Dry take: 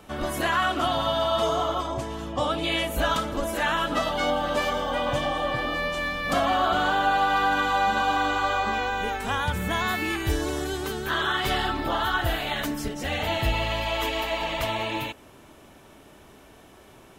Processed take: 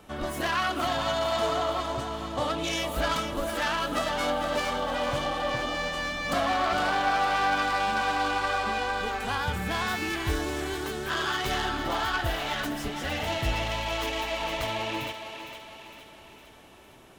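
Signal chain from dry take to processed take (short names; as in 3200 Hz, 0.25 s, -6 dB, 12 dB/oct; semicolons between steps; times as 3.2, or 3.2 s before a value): self-modulated delay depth 0.098 ms; thinning echo 0.459 s, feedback 53%, level -8 dB; gain -3 dB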